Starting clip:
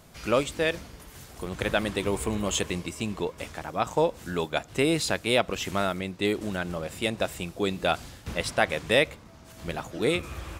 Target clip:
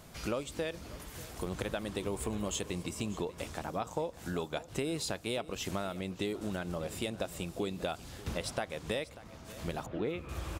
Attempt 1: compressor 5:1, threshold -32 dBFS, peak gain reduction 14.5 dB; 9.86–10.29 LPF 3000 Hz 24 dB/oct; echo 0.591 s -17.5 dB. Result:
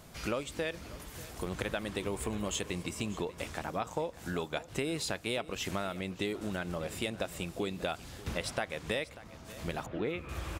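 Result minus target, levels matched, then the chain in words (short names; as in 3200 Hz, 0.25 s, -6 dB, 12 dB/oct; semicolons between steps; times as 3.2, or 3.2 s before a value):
2000 Hz band +3.0 dB
compressor 5:1, threshold -32 dBFS, peak gain reduction 14.5 dB; dynamic EQ 2000 Hz, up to -5 dB, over -50 dBFS, Q 1.1; 9.86–10.29 LPF 3000 Hz 24 dB/oct; echo 0.591 s -17.5 dB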